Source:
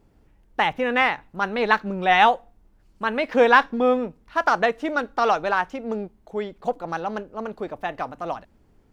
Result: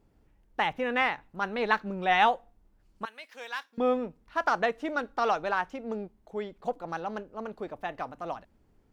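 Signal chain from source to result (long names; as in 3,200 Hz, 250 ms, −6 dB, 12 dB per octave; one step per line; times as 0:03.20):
0:03.05–0:03.78: first difference
level −6.5 dB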